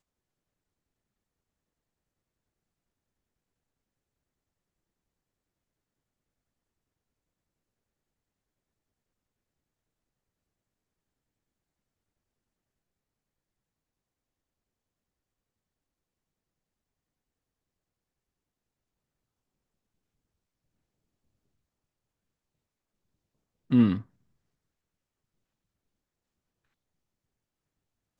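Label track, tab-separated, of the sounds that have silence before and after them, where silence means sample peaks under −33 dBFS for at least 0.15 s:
23.720000	24.010000	sound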